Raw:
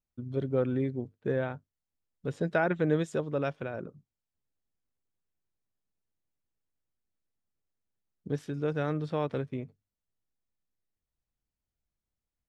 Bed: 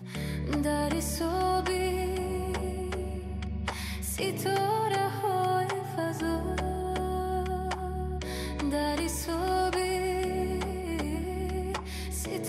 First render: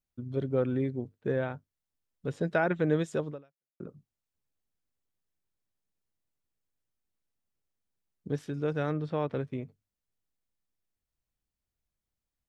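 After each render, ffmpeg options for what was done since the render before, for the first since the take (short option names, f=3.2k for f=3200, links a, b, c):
-filter_complex "[0:a]asettb=1/sr,asplit=3[a][b][c];[a]atrim=end=8.914[d];[b]atrim=start=8.91:end=9.41,asetpts=PTS-STARTPTS,afade=t=in:d=0.004:c=qsin,afade=t=out:st=0.496:d=0.004:c=qsin,lowpass=f=3.3k:p=1[e];[c]atrim=start=9.406[f];[d][e]acrossfade=d=0.004:c1=hsin:c2=qsin[g];[g][f]acrossfade=d=0.004:c1=qsin:c2=hsin,asplit=2[h][i];[h]atrim=end=3.8,asetpts=PTS-STARTPTS,afade=t=out:st=3.3:d=0.5:c=exp[j];[i]atrim=start=3.8,asetpts=PTS-STARTPTS,afade=t=in:d=0.004:c=hsin[k];[j][k]concat=n=2:v=0:a=1"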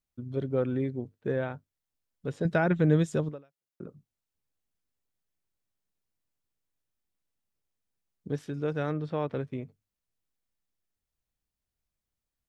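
-filter_complex "[0:a]asettb=1/sr,asplit=3[a][b][c];[a]atrim=end=2.454[d];[b]atrim=start=2.45:end=3.29,asetpts=PTS-STARTPTS,afade=t=in:d=0.004:c=qsin,afade=t=out:st=0.836:d=0.004:c=qsin,bass=f=250:g=9,treble=f=4k:g=4[e];[c]atrim=start=3.286[f];[d][e]acrossfade=d=0.004:c1=hsin:c2=qsin[g];[g][f]acrossfade=d=0.004:c1=qsin:c2=hsin"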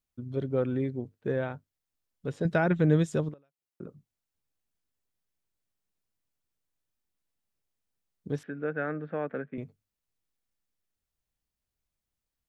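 -filter_complex "[0:a]asettb=1/sr,asplit=3[a][b][c];[a]atrim=end=8.434[d];[b]atrim=start=8.43:end=9.58,asetpts=PTS-STARTPTS,afade=t=in:d=0.004:c=qsin,afade=t=out:st=1.146:d=0.004:c=qsin,highpass=f=180:w=0.5412,highpass=f=180:w=1.3066,equalizer=f=360:t=q:w=4:g=-5,equalizer=f=980:t=q:w=4:g=-8,equalizer=f=1.6k:t=q:w=4:g=10,lowpass=f=2.3k:w=0.5412,lowpass=f=2.3k:w=1.3066[e];[c]atrim=start=9.576[f];[d][e]acrossfade=d=0.004:c1=hsin:c2=qsin[g];[g][f]acrossfade=d=0.004:c1=qsin:c2=hsin,asplit=2[h][i];[h]atrim=end=3.34,asetpts=PTS-STARTPTS,afade=t=out:st=3.336:d=0.004:c=hsin:silence=0.16788[j];[i]atrim=start=3.34,asetpts=PTS-STARTPTS,afade=t=in:d=0.48:silence=0.16788[k];[j][k]concat=n=2:v=0:a=1"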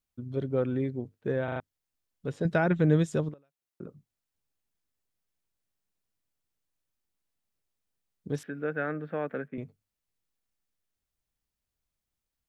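-filter_complex "[0:a]asettb=1/sr,asplit=3[a][b][c];[a]atrim=end=8.344[d];[b]atrim=start=8.34:end=9.48,asetpts=PTS-STARTPTS,afade=t=in:d=0.004:c=qsin,afade=t=out:st=1.136:d=0.004:c=qsin,highshelf=f=4.2k:g=9.5[e];[c]atrim=start=9.476[f];[d][e]acrossfade=d=0.004:c1=hsin:c2=qsin[g];[g][f]acrossfade=d=0.004:c1=qsin:c2=hsin,asplit=5[h][i][j][k][l];[h]atrim=end=1.482[m];[i]atrim=start=1.438:end=1.482[n];[j]atrim=start=1.438:end=1.482[o];[k]atrim=start=1.438:end=1.482[p];[l]atrim=start=1.598[q];[m][n]acrossfade=d=0.004:c1=hsin:c2=hsin[r];[r][o]acrossfade=d=0.004:c1=hsin:c2=hsin[s];[s][p]acrossfade=d=0.004:c1=hsin:c2=hsin[t];[t][q]acrossfade=d=0.004:c1=hsin:c2=hsin"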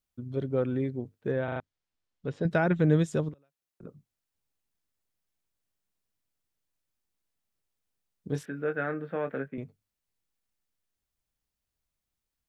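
-filter_complex "[0:a]asettb=1/sr,asplit=3[a][b][c];[a]atrim=end=1.314[d];[b]atrim=start=1.31:end=2.51,asetpts=PTS-STARTPTS,afade=t=in:d=0.004:c=qsin,afade=t=out:st=1.196:d=0.004:c=qsin,lowpass=5.3k[e];[c]atrim=start=2.506[f];[d][e]acrossfade=d=0.004:c1=hsin:c2=qsin[g];[g][f]acrossfade=d=0.004:c1=qsin:c2=hsin,asettb=1/sr,asplit=3[h][i][j];[h]atrim=end=3.334[k];[i]atrim=start=3.33:end=3.84,asetpts=PTS-STARTPTS,afade=t=in:d=0.004:c=qsin,afade=t=out:st=0.506:d=0.004:c=qsin,acrossover=split=140|3000[l][m][n];[m]acompressor=threshold=-52dB:ratio=6:attack=3.2:release=140:knee=2.83:detection=peak[o];[l][o][n]amix=inputs=3:normalize=0[p];[j]atrim=start=3.836[q];[k][p]acrossfade=d=0.004:c1=hsin:c2=qsin[r];[r][q]acrossfade=d=0.004:c1=qsin:c2=hsin,asettb=1/sr,asplit=3[s][t][u];[s]atrim=end=8.294[v];[t]atrim=start=8.29:end=9.53,asetpts=PTS-STARTPTS,afade=t=in:d=0.004:c=qsin,afade=t=out:st=1.236:d=0.004:c=qsin,asplit=2[w][x];[x]adelay=22,volume=-7.5dB[y];[w][y]amix=inputs=2:normalize=0,atrim=end_sample=54684[z];[u]atrim=start=9.526[aa];[v][z]acrossfade=d=0.004:c1=hsin:c2=qsin[ab];[ab][aa]acrossfade=d=0.004:c1=qsin:c2=hsin"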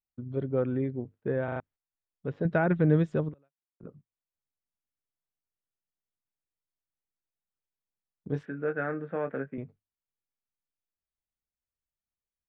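-af "lowpass=2.2k,agate=range=-11dB:threshold=-54dB:ratio=16:detection=peak"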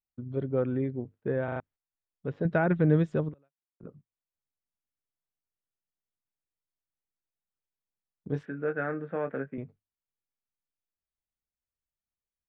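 -af anull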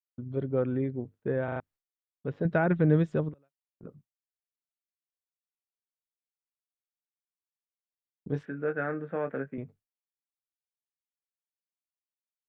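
-af "agate=range=-33dB:threshold=-56dB:ratio=3:detection=peak"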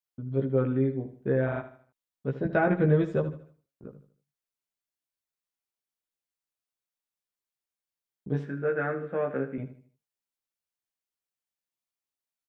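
-filter_complex "[0:a]asplit=2[a][b];[b]adelay=15,volume=-2.5dB[c];[a][c]amix=inputs=2:normalize=0,aecho=1:1:77|154|231|308:0.237|0.0901|0.0342|0.013"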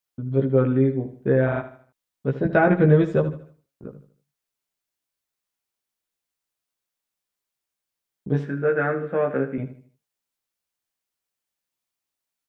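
-af "volume=6.5dB"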